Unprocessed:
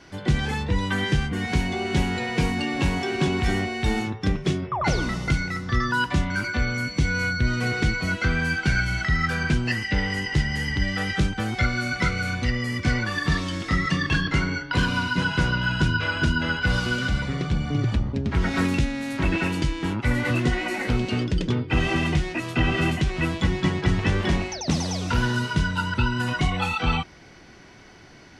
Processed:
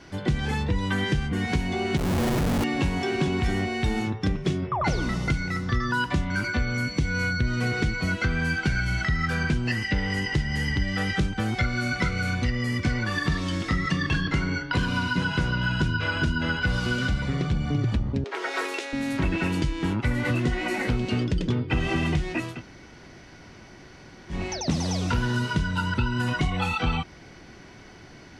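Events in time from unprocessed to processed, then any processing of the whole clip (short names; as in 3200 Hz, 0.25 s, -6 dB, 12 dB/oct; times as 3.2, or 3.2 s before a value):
1.97–2.64 Schmitt trigger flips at -25 dBFS
18.24–18.93 elliptic high-pass 390 Hz, stop band 70 dB
22.5–24.4 room tone, crossfade 0.24 s
whole clip: low shelf 480 Hz +3 dB; compressor 3:1, threshold -22 dBFS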